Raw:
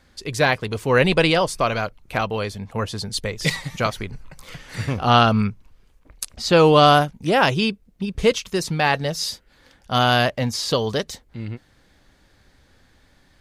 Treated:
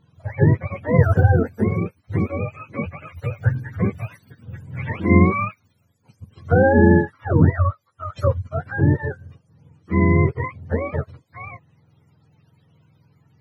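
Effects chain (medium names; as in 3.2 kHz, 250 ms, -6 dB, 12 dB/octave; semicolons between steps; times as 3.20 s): spectrum inverted on a logarithmic axis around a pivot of 500 Hz; tone controls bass +4 dB, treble -15 dB; trim -1.5 dB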